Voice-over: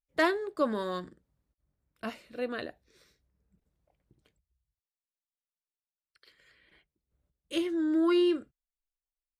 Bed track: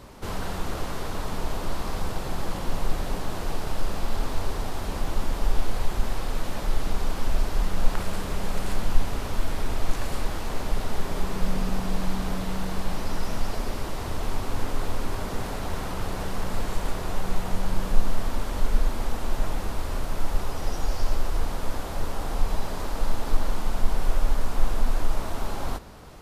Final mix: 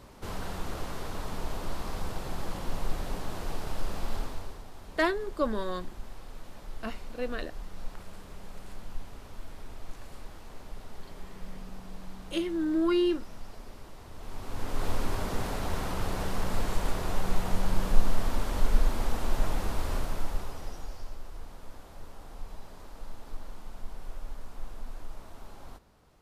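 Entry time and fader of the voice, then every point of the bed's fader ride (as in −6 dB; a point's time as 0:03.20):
4.80 s, −0.5 dB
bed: 0:04.16 −5.5 dB
0:04.64 −16.5 dB
0:14.11 −16.5 dB
0:14.88 −1.5 dB
0:19.95 −1.5 dB
0:21.14 −17 dB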